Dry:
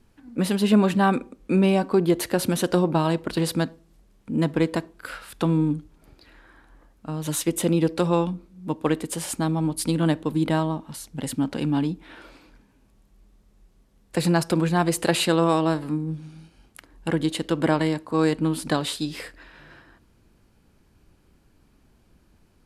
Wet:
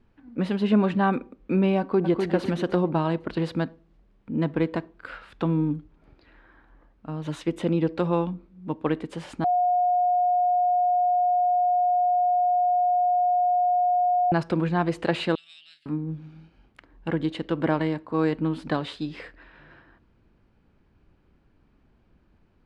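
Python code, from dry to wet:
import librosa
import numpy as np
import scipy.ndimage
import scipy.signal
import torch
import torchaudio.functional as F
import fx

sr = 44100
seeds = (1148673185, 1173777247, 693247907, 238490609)

y = fx.echo_throw(x, sr, start_s=1.79, length_s=0.5, ms=250, feedback_pct=35, wet_db=-5.0)
y = fx.cheby2_highpass(y, sr, hz=1100.0, order=4, stop_db=50, at=(15.35, 15.86))
y = fx.edit(y, sr, fx.bleep(start_s=9.44, length_s=4.88, hz=718.0, db=-16.0), tone=tone)
y = scipy.signal.sosfilt(scipy.signal.butter(2, 2800.0, 'lowpass', fs=sr, output='sos'), y)
y = y * 10.0 ** (-2.5 / 20.0)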